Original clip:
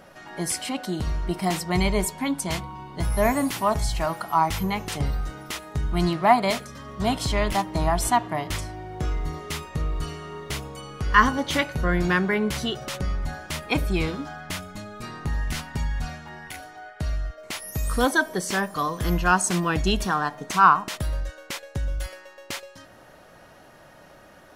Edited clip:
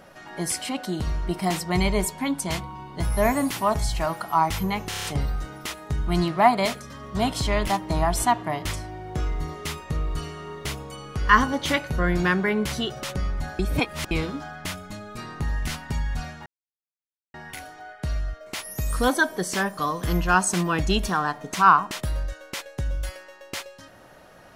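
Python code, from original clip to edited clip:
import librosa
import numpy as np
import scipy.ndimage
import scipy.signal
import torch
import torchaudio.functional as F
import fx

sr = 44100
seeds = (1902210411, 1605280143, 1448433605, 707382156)

y = fx.edit(x, sr, fx.stutter(start_s=4.89, slice_s=0.03, count=6),
    fx.reverse_span(start_s=13.44, length_s=0.52),
    fx.insert_silence(at_s=16.31, length_s=0.88), tone=tone)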